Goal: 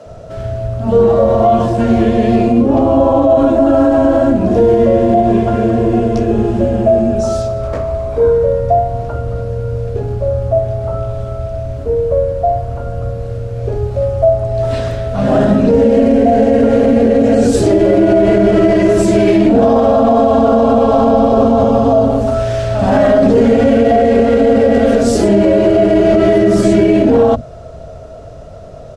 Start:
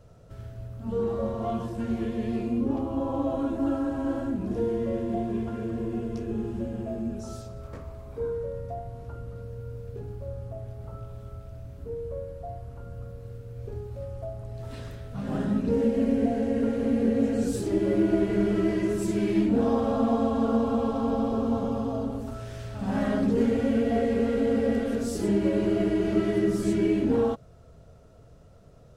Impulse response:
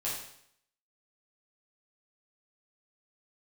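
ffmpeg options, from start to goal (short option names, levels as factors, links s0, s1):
-filter_complex "[0:a]lowpass=8100,equalizer=f=640:t=o:w=0.37:g=11.5,acrossover=split=170[s0][s1];[s0]adelay=60[s2];[s2][s1]amix=inputs=2:normalize=0,alimiter=level_in=9.44:limit=0.891:release=50:level=0:latency=1,volume=0.891"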